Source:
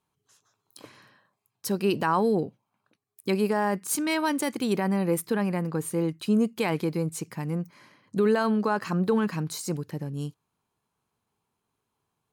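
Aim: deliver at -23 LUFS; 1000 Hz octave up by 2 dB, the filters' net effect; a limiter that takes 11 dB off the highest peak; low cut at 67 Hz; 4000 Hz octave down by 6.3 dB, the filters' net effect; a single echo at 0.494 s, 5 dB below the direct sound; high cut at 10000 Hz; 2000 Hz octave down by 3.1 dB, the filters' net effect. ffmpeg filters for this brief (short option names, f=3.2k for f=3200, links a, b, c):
-af "highpass=67,lowpass=10k,equalizer=f=1k:t=o:g=3.5,equalizer=f=2k:t=o:g=-4,equalizer=f=4k:t=o:g=-7,alimiter=limit=-23.5dB:level=0:latency=1,aecho=1:1:494:0.562,volume=9.5dB"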